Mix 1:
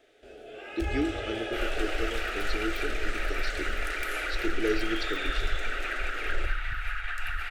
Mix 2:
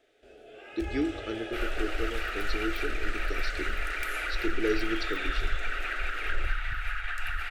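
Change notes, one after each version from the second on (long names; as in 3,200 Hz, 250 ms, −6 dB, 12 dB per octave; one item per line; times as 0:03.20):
first sound −5.0 dB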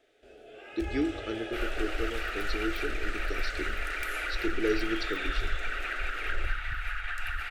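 second sound: send off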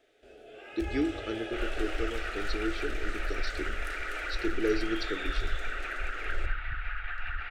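second sound: add high-frequency loss of the air 290 metres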